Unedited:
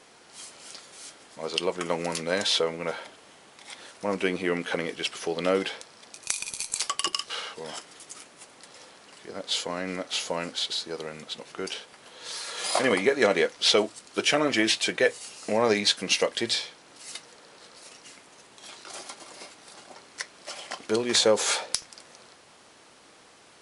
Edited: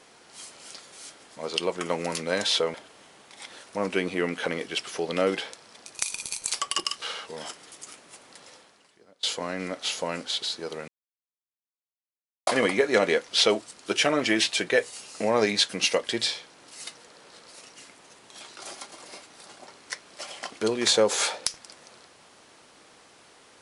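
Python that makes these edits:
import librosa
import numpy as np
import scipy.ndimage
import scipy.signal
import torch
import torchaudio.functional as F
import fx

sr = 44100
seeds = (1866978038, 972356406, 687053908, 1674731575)

y = fx.edit(x, sr, fx.cut(start_s=2.74, length_s=0.28),
    fx.fade_out_to(start_s=8.73, length_s=0.78, curve='qua', floor_db=-23.0),
    fx.silence(start_s=11.16, length_s=1.59), tone=tone)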